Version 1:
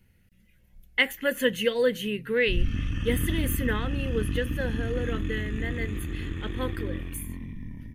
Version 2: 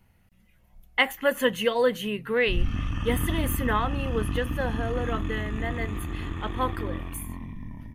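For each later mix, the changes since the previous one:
master: add band shelf 890 Hz +11.5 dB 1.2 oct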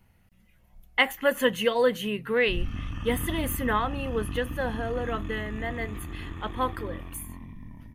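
background -5.0 dB

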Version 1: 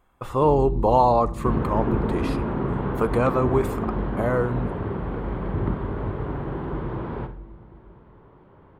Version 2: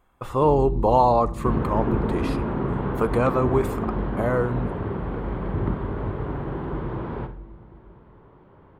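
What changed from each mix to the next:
none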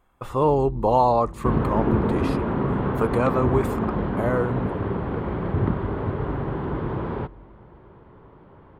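first sound -6.0 dB; second sound +5.0 dB; reverb: off

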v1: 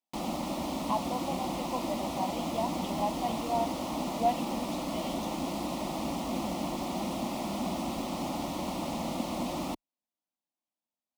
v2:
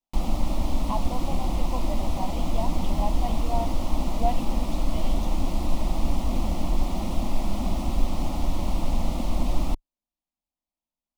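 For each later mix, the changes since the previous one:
master: remove HPF 200 Hz 12 dB/oct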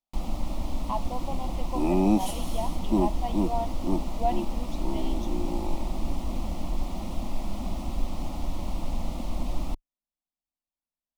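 first sound -5.5 dB; second sound: unmuted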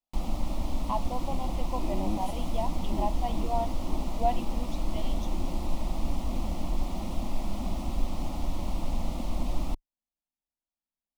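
second sound -12.0 dB

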